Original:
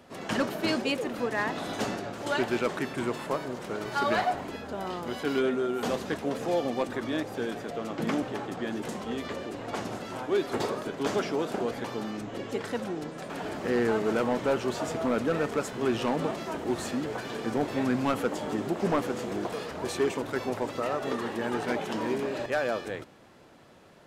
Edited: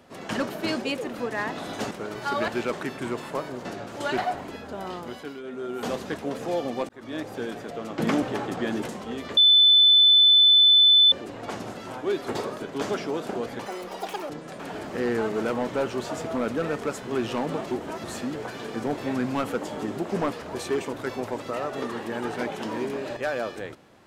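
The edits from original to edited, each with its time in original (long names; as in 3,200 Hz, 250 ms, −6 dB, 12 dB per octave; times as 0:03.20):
0:01.91–0:02.44: swap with 0:03.61–0:04.18
0:04.96–0:05.85: duck −13 dB, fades 0.42 s
0:06.89–0:07.25: fade in
0:07.98–0:08.87: clip gain +5 dB
0:09.37: insert tone 3,510 Hz −12.5 dBFS 1.75 s
0:11.91–0:13.00: play speed 171%
0:16.41–0:16.74: reverse
0:19.03–0:19.62: remove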